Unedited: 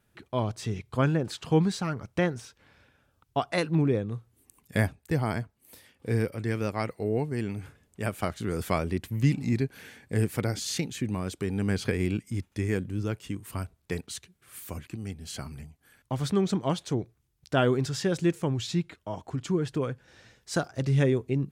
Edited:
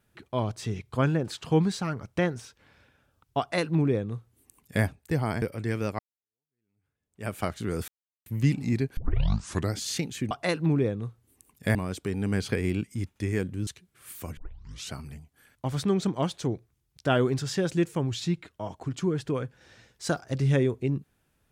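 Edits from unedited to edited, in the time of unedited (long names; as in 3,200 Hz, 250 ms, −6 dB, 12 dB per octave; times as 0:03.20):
0:03.40–0:04.84: duplicate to 0:11.11
0:05.42–0:06.22: remove
0:06.79–0:08.11: fade in exponential
0:08.68–0:09.06: silence
0:09.77: tape start 0.77 s
0:13.03–0:14.14: remove
0:14.84: tape start 0.55 s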